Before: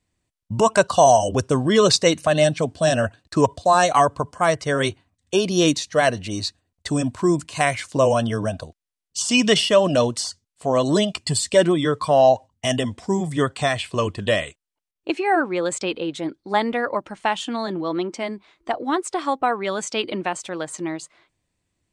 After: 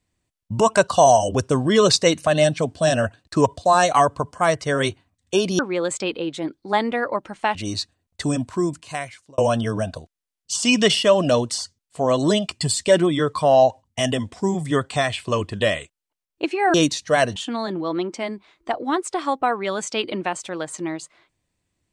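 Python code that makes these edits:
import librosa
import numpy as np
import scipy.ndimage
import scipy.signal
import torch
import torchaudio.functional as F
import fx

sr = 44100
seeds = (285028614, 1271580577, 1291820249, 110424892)

y = fx.edit(x, sr, fx.swap(start_s=5.59, length_s=0.62, other_s=15.4, other_length_s=1.96),
    fx.fade_out_span(start_s=6.92, length_s=1.12), tone=tone)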